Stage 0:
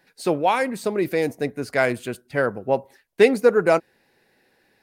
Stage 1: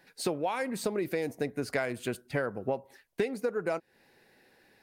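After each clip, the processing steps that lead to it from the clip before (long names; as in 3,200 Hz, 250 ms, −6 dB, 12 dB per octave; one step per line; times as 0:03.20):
downward compressor 16 to 1, threshold −27 dBFS, peak gain reduction 19 dB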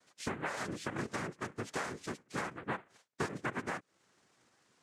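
cochlear-implant simulation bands 3
level −7 dB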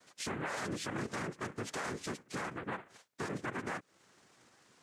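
brickwall limiter −34.5 dBFS, peak gain reduction 11.5 dB
level +5.5 dB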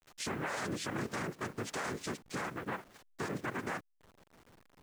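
hold until the input has moved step −55.5 dBFS
level +1 dB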